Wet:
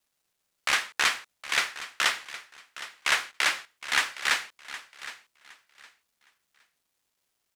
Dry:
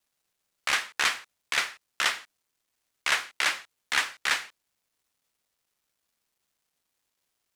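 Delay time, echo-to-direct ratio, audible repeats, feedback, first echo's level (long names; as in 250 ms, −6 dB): 764 ms, −14.5 dB, 2, 24%, −15.0 dB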